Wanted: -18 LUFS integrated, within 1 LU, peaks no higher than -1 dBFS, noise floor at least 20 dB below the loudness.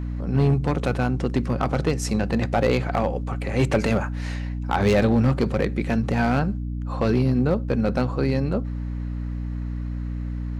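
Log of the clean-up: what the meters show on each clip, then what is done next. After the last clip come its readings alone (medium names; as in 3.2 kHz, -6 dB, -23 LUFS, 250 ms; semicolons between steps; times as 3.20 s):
clipped samples 0.8%; clipping level -12.5 dBFS; hum 60 Hz; highest harmonic 300 Hz; hum level -26 dBFS; loudness -24.0 LUFS; peak level -12.5 dBFS; loudness target -18.0 LUFS
-> clip repair -12.5 dBFS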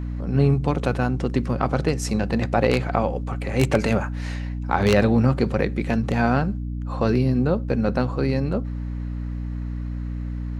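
clipped samples 0.0%; hum 60 Hz; highest harmonic 300 Hz; hum level -26 dBFS
-> de-hum 60 Hz, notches 5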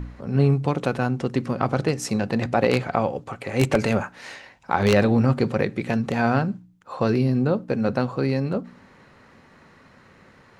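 hum not found; loudness -23.0 LUFS; peak level -3.5 dBFS; loudness target -18.0 LUFS
-> trim +5 dB; peak limiter -1 dBFS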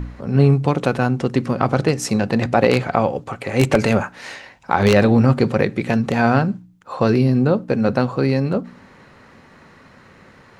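loudness -18.0 LUFS; peak level -1.0 dBFS; noise floor -48 dBFS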